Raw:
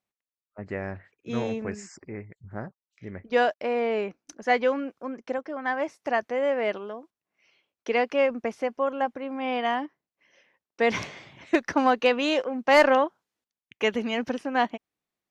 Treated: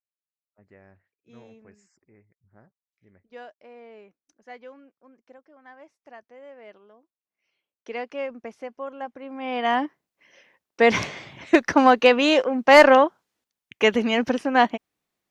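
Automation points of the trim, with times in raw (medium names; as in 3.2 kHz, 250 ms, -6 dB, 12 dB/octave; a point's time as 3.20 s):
6.57 s -20 dB
7.96 s -8 dB
9.00 s -8 dB
9.51 s -1 dB
9.78 s +6 dB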